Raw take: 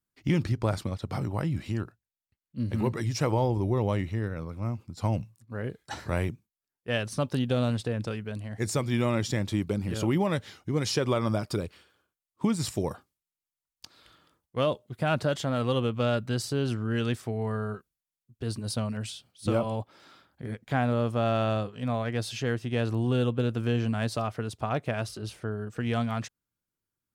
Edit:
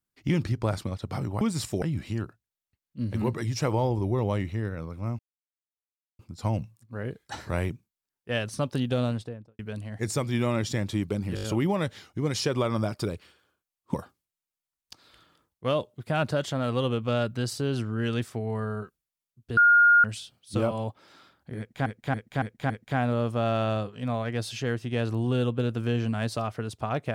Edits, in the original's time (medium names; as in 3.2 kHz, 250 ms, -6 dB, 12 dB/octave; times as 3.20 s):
4.78 s: insert silence 1.00 s
7.56–8.18 s: studio fade out
9.94 s: stutter 0.02 s, 5 plays
12.45–12.86 s: move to 1.41 s
18.49–18.96 s: bleep 1.42 kHz -14 dBFS
20.50–20.78 s: loop, 5 plays